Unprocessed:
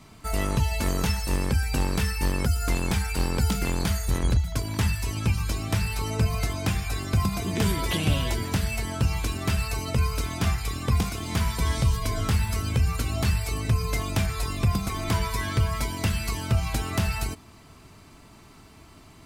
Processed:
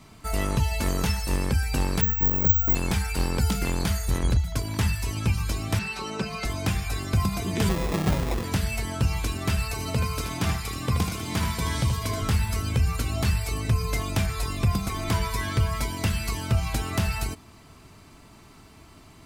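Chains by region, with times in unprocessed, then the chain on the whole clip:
0:02.01–0:02.75: head-to-tape spacing loss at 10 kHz 40 dB + double-tracking delay 31 ms −13 dB + bad sample-rate conversion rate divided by 2×, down none, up zero stuff
0:05.79–0:06.45: three-way crossover with the lows and the highs turned down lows −19 dB, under 170 Hz, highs −16 dB, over 6,700 Hz + comb filter 5.3 ms, depth 57%
0:07.69–0:08.44: Butterworth low-pass 4,200 Hz 96 dB per octave + comb filter 5.2 ms, depth 47% + sample-rate reduction 1,500 Hz
0:09.72–0:12.22: high-pass filter 79 Hz + single-tap delay 78 ms −6.5 dB
whole clip: no processing

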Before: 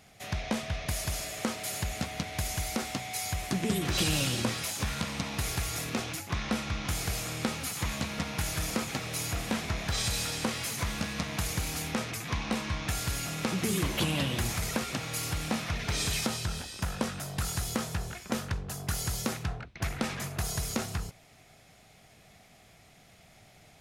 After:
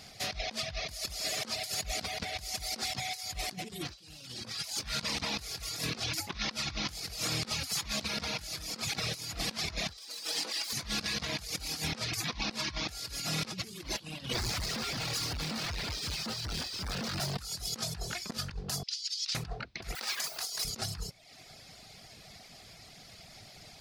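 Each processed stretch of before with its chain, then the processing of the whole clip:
0:09.97–0:10.73: lower of the sound and its delayed copy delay 6.1 ms + high-pass filter 250 Hz 24 dB per octave
0:14.33–0:17.37: sign of each sample alone + low-pass filter 3,500 Hz 6 dB per octave
0:18.83–0:19.35: compressor whose output falls as the input rises −32 dBFS, ratio −0.5 + flat-topped band-pass 4,100 Hz, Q 1.3
0:19.95–0:20.65: Bessel high-pass filter 760 Hz + bit-depth reduction 8 bits, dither triangular
whole clip: reverb reduction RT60 0.7 s; parametric band 4,700 Hz +12.5 dB 0.65 octaves; compressor whose output falls as the input rises −36 dBFS, ratio −0.5

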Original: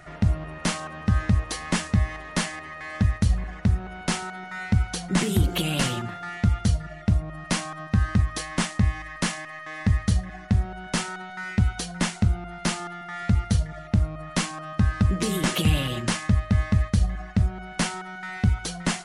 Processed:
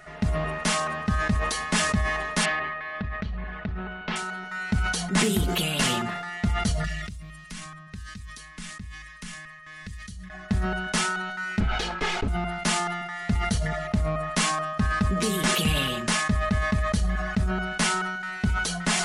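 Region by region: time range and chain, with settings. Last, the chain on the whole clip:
0:02.45–0:04.16: low-pass filter 3,600 Hz 24 dB per octave + downward compressor, threshold −23 dBFS
0:06.84–0:10.30: guitar amp tone stack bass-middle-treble 6-0-2 + multiband upward and downward compressor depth 100%
0:11.60–0:12.28: lower of the sound and its delayed copy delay 2.4 ms + low-pass filter 3,300 Hz
whole clip: low-shelf EQ 430 Hz −5.5 dB; comb filter 4.7 ms, depth 52%; level that may fall only so fast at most 32 dB per second

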